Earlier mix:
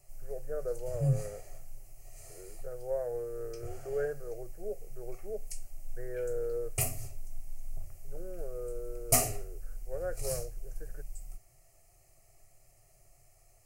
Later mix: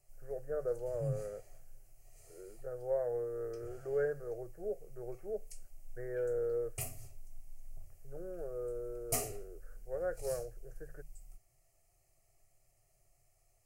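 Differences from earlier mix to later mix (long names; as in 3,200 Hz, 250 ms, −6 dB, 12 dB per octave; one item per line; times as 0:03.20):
background −9.5 dB
master: add parametric band 3,300 Hz +2.5 dB 0.31 octaves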